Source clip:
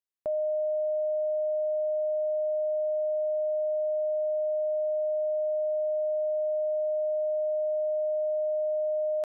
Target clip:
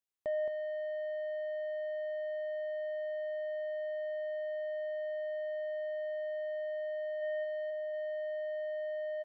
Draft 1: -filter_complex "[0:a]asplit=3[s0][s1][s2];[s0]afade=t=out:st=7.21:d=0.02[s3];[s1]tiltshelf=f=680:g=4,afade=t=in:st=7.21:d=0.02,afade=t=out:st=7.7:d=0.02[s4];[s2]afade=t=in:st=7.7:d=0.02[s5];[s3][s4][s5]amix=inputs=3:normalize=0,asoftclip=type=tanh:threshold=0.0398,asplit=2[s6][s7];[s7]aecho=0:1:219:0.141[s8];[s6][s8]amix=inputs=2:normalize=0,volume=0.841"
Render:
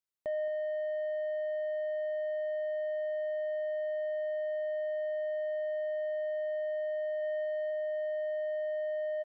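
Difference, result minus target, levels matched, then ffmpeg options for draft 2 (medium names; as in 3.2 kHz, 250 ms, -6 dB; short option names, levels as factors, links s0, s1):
echo-to-direct -10 dB
-filter_complex "[0:a]asplit=3[s0][s1][s2];[s0]afade=t=out:st=7.21:d=0.02[s3];[s1]tiltshelf=f=680:g=4,afade=t=in:st=7.21:d=0.02,afade=t=out:st=7.7:d=0.02[s4];[s2]afade=t=in:st=7.7:d=0.02[s5];[s3][s4][s5]amix=inputs=3:normalize=0,asoftclip=type=tanh:threshold=0.0398,asplit=2[s6][s7];[s7]aecho=0:1:219:0.447[s8];[s6][s8]amix=inputs=2:normalize=0,volume=0.841"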